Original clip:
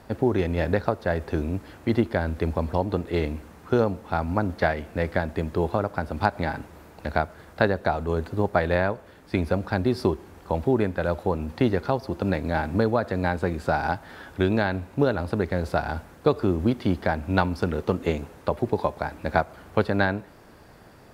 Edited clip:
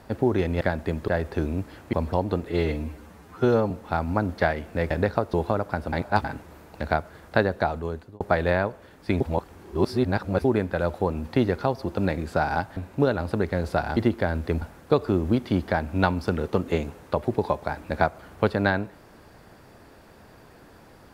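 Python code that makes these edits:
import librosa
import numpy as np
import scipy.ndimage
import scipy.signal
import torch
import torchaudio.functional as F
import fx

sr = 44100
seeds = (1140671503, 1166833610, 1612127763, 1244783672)

y = fx.edit(x, sr, fx.swap(start_s=0.61, length_s=0.43, other_s=5.11, other_length_s=0.47),
    fx.move(start_s=1.89, length_s=0.65, to_s=15.96),
    fx.stretch_span(start_s=3.1, length_s=0.81, factor=1.5),
    fx.reverse_span(start_s=6.17, length_s=0.32),
    fx.fade_out_span(start_s=7.88, length_s=0.57),
    fx.reverse_span(start_s=9.45, length_s=1.24),
    fx.cut(start_s=12.42, length_s=1.08),
    fx.cut(start_s=14.09, length_s=0.67), tone=tone)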